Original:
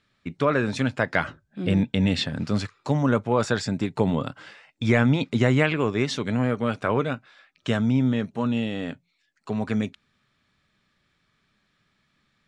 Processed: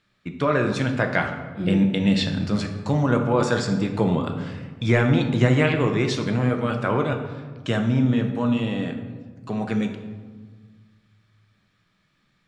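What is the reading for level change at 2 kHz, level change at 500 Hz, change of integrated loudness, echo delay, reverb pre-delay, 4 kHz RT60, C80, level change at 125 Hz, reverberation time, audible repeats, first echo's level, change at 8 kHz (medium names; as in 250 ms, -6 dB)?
+1.0 dB, +2.0 dB, +2.0 dB, no echo, 6 ms, 0.80 s, 9.0 dB, +3.0 dB, 1.5 s, no echo, no echo, +1.0 dB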